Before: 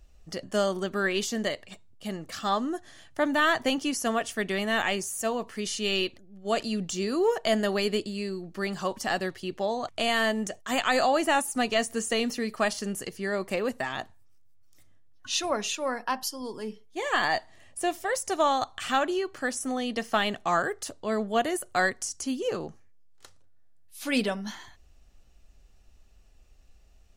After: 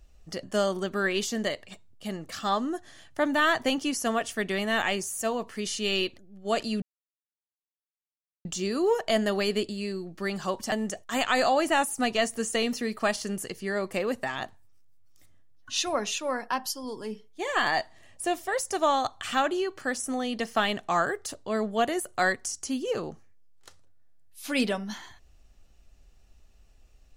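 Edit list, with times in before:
6.82 insert silence 1.63 s
9.09–10.29 cut

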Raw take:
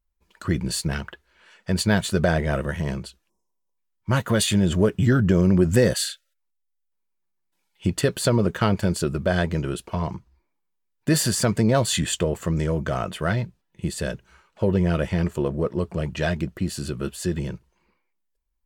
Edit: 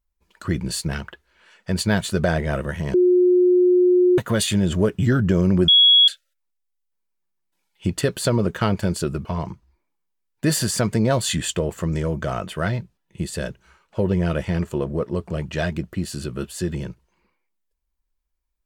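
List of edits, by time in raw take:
2.94–4.18 bleep 360 Hz -12 dBFS
5.68–6.08 bleep 3340 Hz -9.5 dBFS
9.25–9.89 cut

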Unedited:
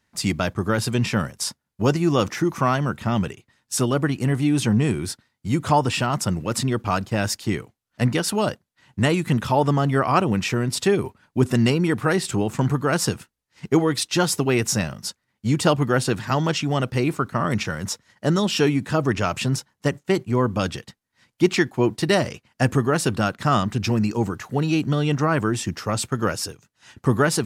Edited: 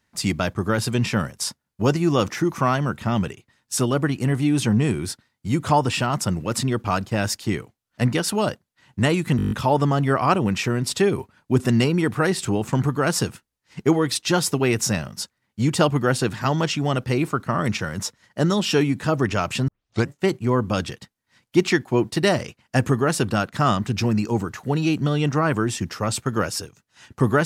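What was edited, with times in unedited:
9.37 stutter 0.02 s, 8 plays
19.54 tape start 0.41 s

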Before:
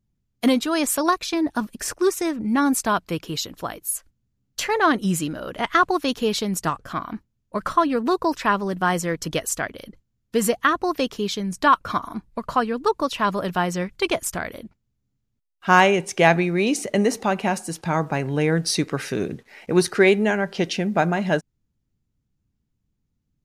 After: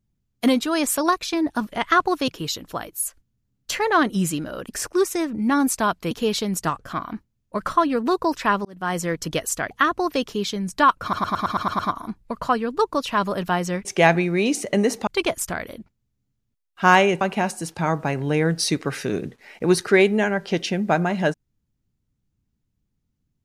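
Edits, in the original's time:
1.72–3.17 swap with 5.55–6.11
8.65–9.04 fade in
9.71–10.55 cut
11.86 stutter 0.11 s, 8 plays
16.06–17.28 move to 13.92

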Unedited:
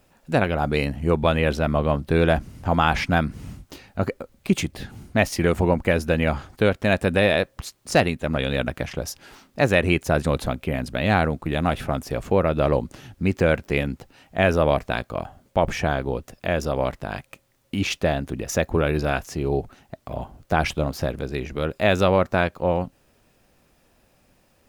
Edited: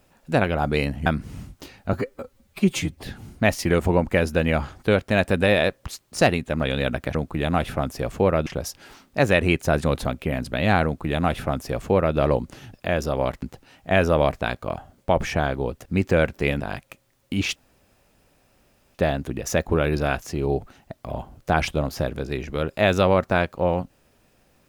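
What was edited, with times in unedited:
1.06–3.16 cut
4.03–4.76 stretch 1.5×
11.26–12.58 copy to 8.88
13.15–13.9 swap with 16.33–17.02
17.97 insert room tone 1.39 s

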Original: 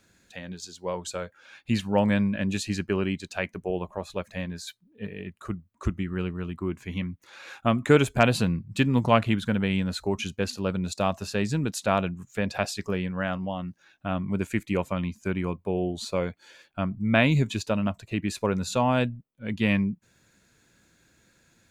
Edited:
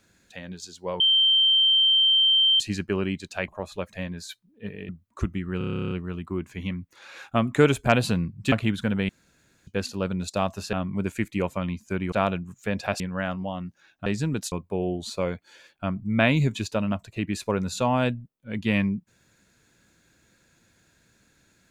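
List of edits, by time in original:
1–2.6 bleep 3130 Hz -16 dBFS
3.48–3.86 cut
5.27–5.53 cut
6.22 stutter 0.03 s, 12 plays
8.83–9.16 cut
9.73–10.31 room tone
11.37–11.83 swap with 14.08–15.47
12.71–13.02 cut

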